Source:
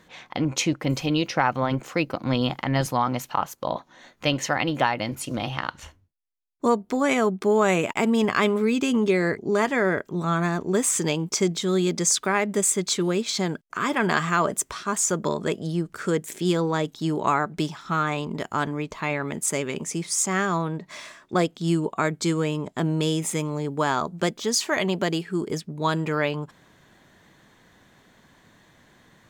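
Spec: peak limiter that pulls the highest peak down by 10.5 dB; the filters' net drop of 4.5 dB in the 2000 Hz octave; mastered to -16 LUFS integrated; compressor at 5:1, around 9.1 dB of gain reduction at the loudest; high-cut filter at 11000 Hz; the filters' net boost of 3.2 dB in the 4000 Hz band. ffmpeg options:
-af "lowpass=11k,equalizer=f=2k:t=o:g=-7.5,equalizer=f=4k:t=o:g=6.5,acompressor=threshold=-27dB:ratio=5,volume=17.5dB,alimiter=limit=-6dB:level=0:latency=1"

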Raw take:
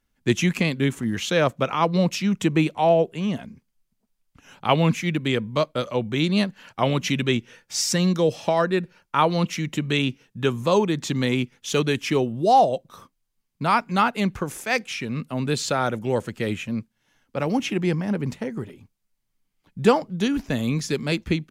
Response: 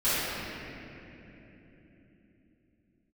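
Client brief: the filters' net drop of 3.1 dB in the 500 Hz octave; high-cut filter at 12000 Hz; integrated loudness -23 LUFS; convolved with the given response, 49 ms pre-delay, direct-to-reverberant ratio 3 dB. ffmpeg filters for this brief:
-filter_complex "[0:a]lowpass=12k,equalizer=f=500:t=o:g=-4,asplit=2[a][b];[1:a]atrim=start_sample=2205,adelay=49[c];[b][c]afir=irnorm=-1:irlink=0,volume=-17.5dB[d];[a][d]amix=inputs=2:normalize=0,volume=-0.5dB"

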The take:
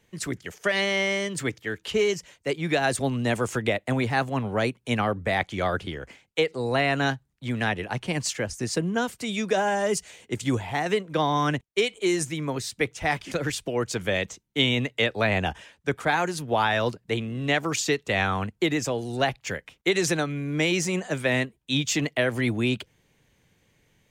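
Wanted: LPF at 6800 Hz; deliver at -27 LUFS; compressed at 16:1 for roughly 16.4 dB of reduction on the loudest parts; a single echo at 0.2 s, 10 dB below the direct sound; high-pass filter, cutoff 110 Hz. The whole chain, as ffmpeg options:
-af "highpass=110,lowpass=6.8k,acompressor=threshold=-35dB:ratio=16,aecho=1:1:200:0.316,volume=12.5dB"

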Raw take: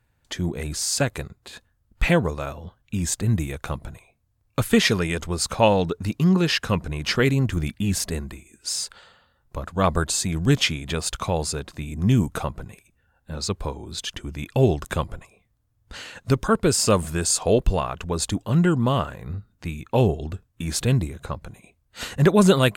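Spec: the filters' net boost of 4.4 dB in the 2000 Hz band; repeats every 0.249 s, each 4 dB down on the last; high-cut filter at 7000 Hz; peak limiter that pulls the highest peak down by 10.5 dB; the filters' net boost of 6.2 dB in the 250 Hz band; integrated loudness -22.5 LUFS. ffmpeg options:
-af "lowpass=7k,equalizer=f=250:t=o:g=8.5,equalizer=f=2k:t=o:g=5.5,alimiter=limit=-9.5dB:level=0:latency=1,aecho=1:1:249|498|747|996|1245|1494|1743|1992|2241:0.631|0.398|0.25|0.158|0.0994|0.0626|0.0394|0.0249|0.0157,volume=-1.5dB"

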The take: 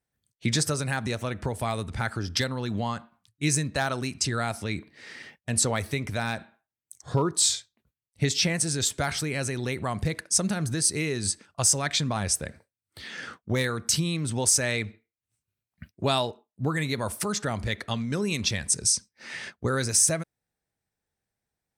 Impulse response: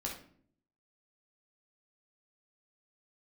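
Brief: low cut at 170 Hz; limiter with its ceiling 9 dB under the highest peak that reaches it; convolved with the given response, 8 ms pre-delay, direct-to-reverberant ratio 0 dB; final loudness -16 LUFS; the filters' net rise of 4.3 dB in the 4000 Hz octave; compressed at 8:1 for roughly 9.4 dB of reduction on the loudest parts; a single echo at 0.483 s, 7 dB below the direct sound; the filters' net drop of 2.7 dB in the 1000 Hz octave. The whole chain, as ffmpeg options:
-filter_complex "[0:a]highpass=170,equalizer=f=1k:t=o:g=-4,equalizer=f=4k:t=o:g=5.5,acompressor=threshold=-26dB:ratio=8,alimiter=limit=-20.5dB:level=0:latency=1,aecho=1:1:483:0.447,asplit=2[a][b];[1:a]atrim=start_sample=2205,adelay=8[c];[b][c]afir=irnorm=-1:irlink=0,volume=-1dB[d];[a][d]amix=inputs=2:normalize=0,volume=14dB"

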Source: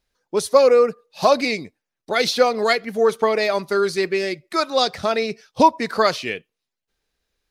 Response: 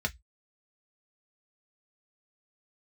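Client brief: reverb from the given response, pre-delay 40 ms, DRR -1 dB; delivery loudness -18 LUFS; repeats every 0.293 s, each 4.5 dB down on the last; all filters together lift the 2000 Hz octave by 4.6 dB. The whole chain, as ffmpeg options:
-filter_complex "[0:a]equalizer=f=2k:t=o:g=5.5,aecho=1:1:293|586|879|1172|1465|1758|2051|2344|2637:0.596|0.357|0.214|0.129|0.0772|0.0463|0.0278|0.0167|0.01,asplit=2[a][b];[1:a]atrim=start_sample=2205,adelay=40[c];[b][c]afir=irnorm=-1:irlink=0,volume=-5dB[d];[a][d]amix=inputs=2:normalize=0,volume=-4.5dB"

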